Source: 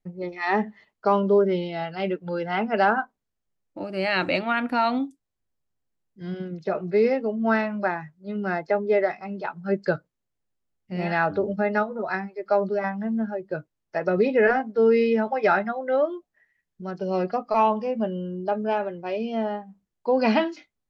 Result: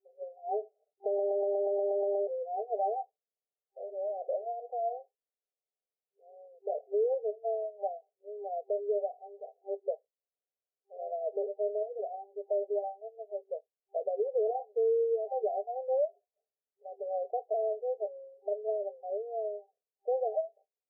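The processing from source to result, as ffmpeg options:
ffmpeg -i in.wav -filter_complex "[0:a]asplit=3[link_01][link_02][link_03];[link_01]afade=type=out:start_time=8.91:duration=0.02[link_04];[link_02]aeval=exprs='if(lt(val(0),0),0.447*val(0),val(0))':channel_layout=same,afade=type=in:start_time=8.91:duration=0.02,afade=type=out:start_time=9.81:duration=0.02[link_05];[link_03]afade=type=in:start_time=9.81:duration=0.02[link_06];[link_04][link_05][link_06]amix=inputs=3:normalize=0,asettb=1/sr,asplit=3[link_07][link_08][link_09];[link_07]atrim=end=14.484[link_10];[link_08]atrim=start=14.48:end=15.31,asetpts=PTS-STARTPTS,afade=type=in:duration=0.004:curve=qsin,afade=type=out:start_time=0.826:duration=0.004:curve=qsin,lowpass=frequency=1200:poles=1[link_11];[link_09]atrim=start=15.306[link_12];[link_10][link_11]acrossfade=duration=0.004:curve1=hsin:curve2=qsin[link_13];[link_13][link_12]acrossfade=duration=0.004:curve1=qsin:curve2=hsin,asplit=11[link_14][link_15][link_16][link_17][link_18][link_19][link_20][link_21][link_22][link_23][link_24];[link_14]atrim=end=1.192[link_25];[link_15]atrim=start=1.068:end=1.192[link_26];[link_16]atrim=start=1.068:end=1.192[link_27];[link_17]atrim=start=1.068:end=1.192[link_28];[link_18]atrim=start=1.068:end=1.192[link_29];[link_19]atrim=start=1.068:end=1.192[link_30];[link_20]atrim=start=1.068:end=1.192[link_31];[link_21]atrim=start=1.068:end=1.192[link_32];[link_22]atrim=start=1.068:end=1.192[link_33];[link_23]atrim=start=1.068:end=1.192[link_34];[link_24]atrim=start=2.268[link_35];[link_25][link_26]acrossfade=duration=0.004:curve1=hsin:curve2=hsin[link_36];[link_36][link_27]acrossfade=duration=0.004:curve1=hsin:curve2=hsin[link_37];[link_37][link_28]acrossfade=duration=0.004:curve1=hsin:curve2=hsin[link_38];[link_38][link_29]acrossfade=duration=0.004:curve1=hsin:curve2=hsin[link_39];[link_39][link_30]acrossfade=duration=0.004:curve1=hsin:curve2=hsin[link_40];[link_40][link_31]acrossfade=duration=0.004:curve1=hsin:curve2=hsin[link_41];[link_41][link_32]acrossfade=duration=0.004:curve1=hsin:curve2=hsin[link_42];[link_42][link_33]acrossfade=duration=0.004:curve1=hsin:curve2=hsin[link_43];[link_43][link_34]acrossfade=duration=0.004:curve1=hsin:curve2=hsin[link_44];[link_44][link_35]acrossfade=duration=0.004:curve1=hsin:curve2=hsin,afftfilt=real='re*between(b*sr/4096,390,790)':imag='im*between(b*sr/4096,390,790)':win_size=4096:overlap=0.75,alimiter=limit=-17dB:level=0:latency=1:release=119,volume=-5.5dB" out.wav

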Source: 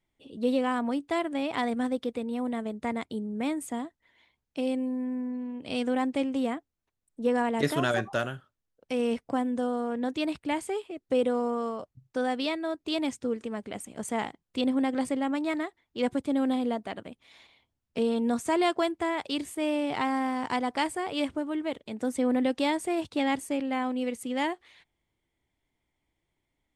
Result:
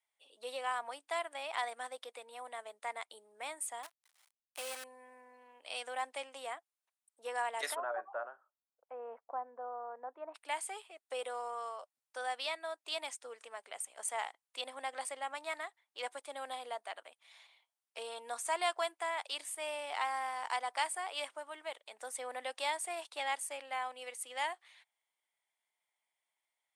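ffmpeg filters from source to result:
ffmpeg -i in.wav -filter_complex "[0:a]asettb=1/sr,asplit=3[link_01][link_02][link_03];[link_01]atrim=end=3.834[link_04];[link_02]atrim=start=3.83:end=4.84,asetpts=PTS-STARTPTS,afade=type=in:duration=0.004:curve=qsin,afade=type=out:start_time=1.006:duration=0.004:curve=qsin,acrusher=bits=7:dc=4:mix=0:aa=0.000001[link_05];[link_03]atrim=start=4.836[link_06];[link_04][link_05]acrossfade=duration=0.004:curve1=hsin:curve2=qsin[link_07];[link_07][link_06]acrossfade=duration=0.004:curve1=qsin:curve2=hsin,asplit=3[link_08][link_09][link_10];[link_08]afade=type=out:start_time=7.74:duration=0.02[link_11];[link_09]lowpass=frequency=1200:width=0.5412,lowpass=frequency=1200:width=1.3066,afade=type=in:start_time=7.74:duration=0.02,afade=type=out:start_time=10.34:duration=0.02[link_12];[link_10]afade=type=in:start_time=10.34:duration=0.02[link_13];[link_11][link_12][link_13]amix=inputs=3:normalize=0,highpass=frequency=670:width=0.5412,highpass=frequency=670:width=1.3066,equalizer=frequency=9300:width=2.5:gain=8.5,volume=-4.5dB" out.wav

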